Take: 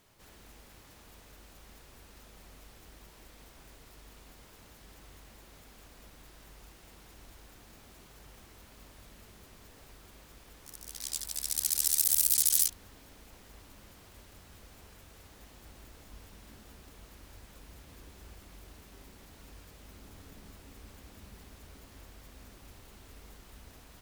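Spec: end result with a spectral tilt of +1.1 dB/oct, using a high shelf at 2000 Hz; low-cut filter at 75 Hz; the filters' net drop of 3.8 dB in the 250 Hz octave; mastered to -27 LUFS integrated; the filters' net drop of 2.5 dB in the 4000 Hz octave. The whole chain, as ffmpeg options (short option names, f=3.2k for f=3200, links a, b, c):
-af "highpass=75,equalizer=f=250:t=o:g=-5,highshelf=f=2k:g=4,equalizer=f=4k:t=o:g=-8,volume=-3.5dB"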